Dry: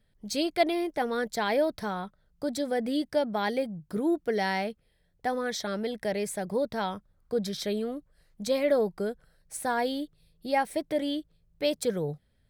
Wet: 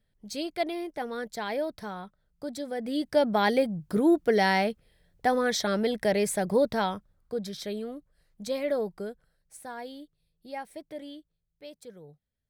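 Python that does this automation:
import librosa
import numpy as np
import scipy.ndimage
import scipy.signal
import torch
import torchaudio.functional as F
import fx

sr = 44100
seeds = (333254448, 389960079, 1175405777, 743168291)

y = fx.gain(x, sr, db=fx.line((2.76, -5.0), (3.26, 5.0), (6.69, 5.0), (7.39, -4.0), (8.93, -4.0), (9.68, -11.5), (11.01, -11.5), (11.64, -18.0)))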